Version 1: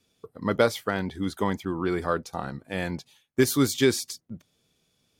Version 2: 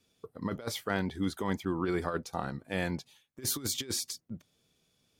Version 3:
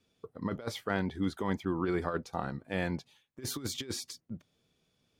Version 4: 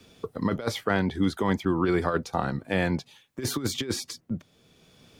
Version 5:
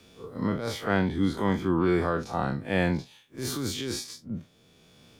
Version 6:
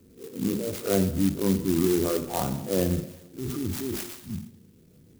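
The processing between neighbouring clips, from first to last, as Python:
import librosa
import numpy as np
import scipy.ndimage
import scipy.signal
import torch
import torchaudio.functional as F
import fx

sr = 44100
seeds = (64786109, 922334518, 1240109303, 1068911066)

y1 = fx.over_compress(x, sr, threshold_db=-26.0, ratio=-0.5)
y1 = y1 * librosa.db_to_amplitude(-5.0)
y2 = fx.high_shelf(y1, sr, hz=5500.0, db=-10.5)
y3 = fx.band_squash(y2, sr, depth_pct=40)
y3 = y3 * librosa.db_to_amplitude(7.5)
y4 = fx.spec_blur(y3, sr, span_ms=82.0)
y4 = y4 * librosa.db_to_amplitude(1.5)
y5 = fx.envelope_sharpen(y4, sr, power=3.0)
y5 = fx.rev_double_slope(y5, sr, seeds[0], early_s=0.93, late_s=3.1, knee_db=-25, drr_db=6.0)
y5 = fx.clock_jitter(y5, sr, seeds[1], jitter_ms=0.11)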